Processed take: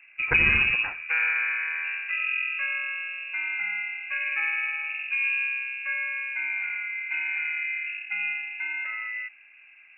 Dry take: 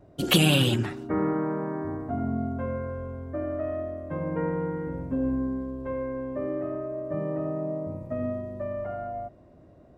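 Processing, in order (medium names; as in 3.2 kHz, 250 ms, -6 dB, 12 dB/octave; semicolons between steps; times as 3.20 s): peaking EQ 1.1 kHz +11.5 dB 0.33 oct; frequency inversion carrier 2.7 kHz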